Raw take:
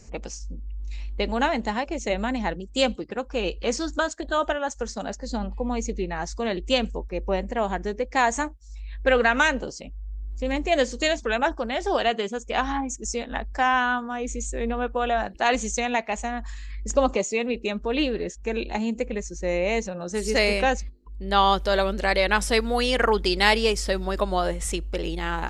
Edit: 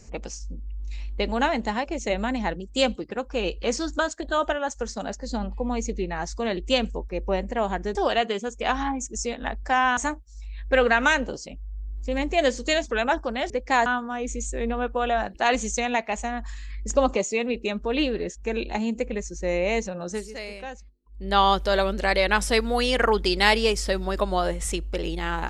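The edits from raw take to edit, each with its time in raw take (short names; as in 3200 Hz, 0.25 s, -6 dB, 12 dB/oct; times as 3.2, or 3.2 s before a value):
7.95–8.31 swap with 11.84–13.86
20.11–21.25 dip -15 dB, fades 0.17 s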